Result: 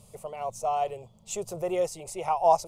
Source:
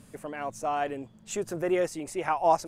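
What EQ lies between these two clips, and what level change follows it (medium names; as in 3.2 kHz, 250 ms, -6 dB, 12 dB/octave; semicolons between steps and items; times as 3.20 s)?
static phaser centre 680 Hz, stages 4; +2.5 dB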